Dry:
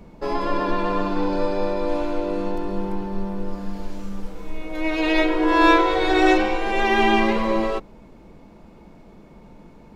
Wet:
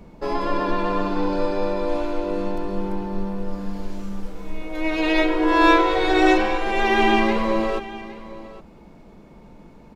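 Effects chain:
single-tap delay 813 ms −17 dB

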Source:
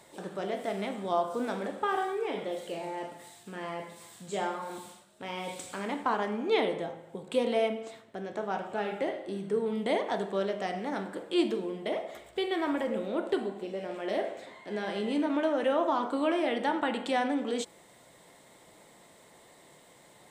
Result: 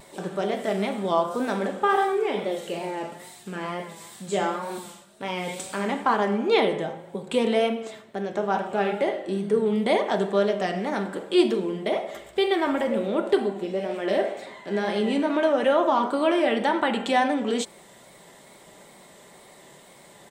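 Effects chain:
tape wow and flutter 57 cents
comb filter 5.1 ms, depth 33%
level +6.5 dB

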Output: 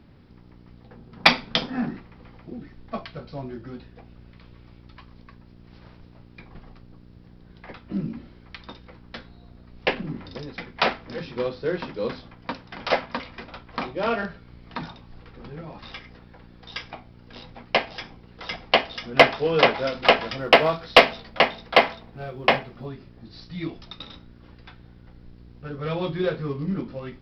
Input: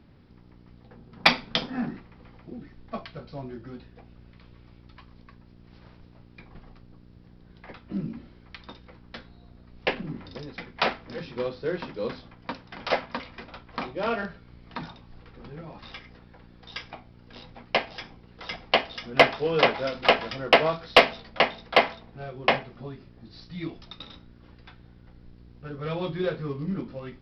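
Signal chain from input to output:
0:20.38–0:22.86: floating-point word with a short mantissa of 6 bits
level +3 dB

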